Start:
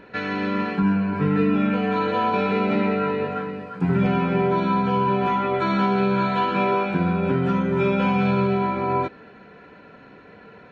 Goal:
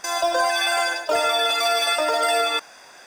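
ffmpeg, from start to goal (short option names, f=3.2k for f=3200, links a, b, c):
-af "asetrate=154350,aresample=44100,acrusher=bits=7:mode=log:mix=0:aa=0.000001"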